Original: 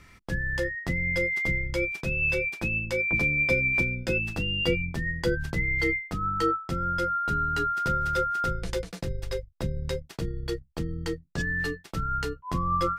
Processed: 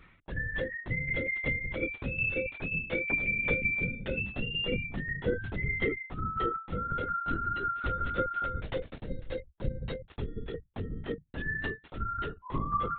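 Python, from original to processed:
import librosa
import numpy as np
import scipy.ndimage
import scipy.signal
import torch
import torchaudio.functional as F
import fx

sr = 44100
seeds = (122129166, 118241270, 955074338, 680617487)

y = fx.tremolo_shape(x, sr, shape='saw_down', hz=5.5, depth_pct=65)
y = fx.lpc_vocoder(y, sr, seeds[0], excitation='whisper', order=16)
y = y * 10.0 ** (-2.0 / 20.0)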